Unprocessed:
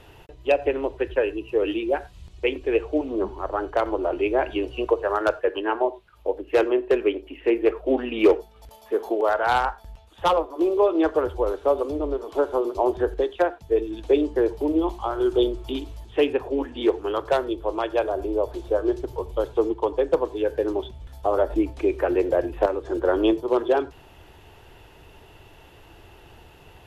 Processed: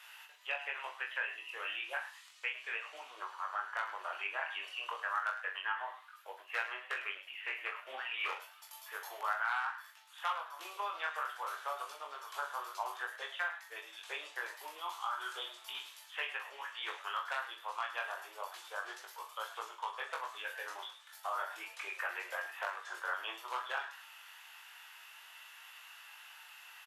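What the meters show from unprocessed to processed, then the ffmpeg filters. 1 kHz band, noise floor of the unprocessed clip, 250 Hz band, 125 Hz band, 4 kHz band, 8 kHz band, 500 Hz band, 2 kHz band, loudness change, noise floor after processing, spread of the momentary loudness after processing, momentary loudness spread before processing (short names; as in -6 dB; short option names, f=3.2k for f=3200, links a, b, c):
-11.0 dB, -50 dBFS, under -40 dB, under -40 dB, -5.5 dB, n/a, -29.5 dB, -3.0 dB, -16.0 dB, -57 dBFS, 14 LU, 7 LU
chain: -filter_complex "[0:a]highpass=f=1.3k:w=0.5412,highpass=f=1.3k:w=1.3066,acrossover=split=2600[a][b];[b]acompressor=threshold=-45dB:ratio=4:attack=1:release=60[c];[a][c]amix=inputs=2:normalize=0,equalizer=f=3.5k:w=0.74:g=-4.5,acompressor=threshold=-40dB:ratio=2.5,flanger=delay=18.5:depth=4.8:speed=0.31,asplit=2[d][e];[e]adelay=42,volume=-8.5dB[f];[d][f]amix=inputs=2:normalize=0,asplit=4[g][h][i][j];[h]adelay=104,afreqshift=140,volume=-13dB[k];[i]adelay=208,afreqshift=280,volume=-23.2dB[l];[j]adelay=312,afreqshift=420,volume=-33.3dB[m];[g][k][l][m]amix=inputs=4:normalize=0,volume=7.5dB"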